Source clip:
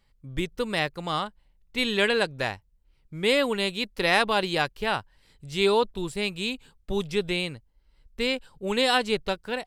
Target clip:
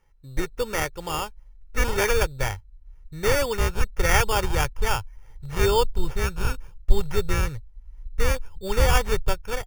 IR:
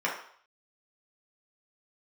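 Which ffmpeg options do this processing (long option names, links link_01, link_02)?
-af "acrusher=samples=11:mix=1:aa=0.000001,asubboost=boost=8.5:cutoff=90,aecho=1:1:2.2:0.44"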